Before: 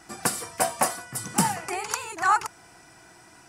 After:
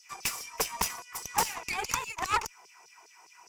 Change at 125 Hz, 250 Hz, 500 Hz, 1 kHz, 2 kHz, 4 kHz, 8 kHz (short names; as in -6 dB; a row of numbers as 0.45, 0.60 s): -11.0, -14.5, -8.5, -6.5, -4.5, -0.5, -5.0 dB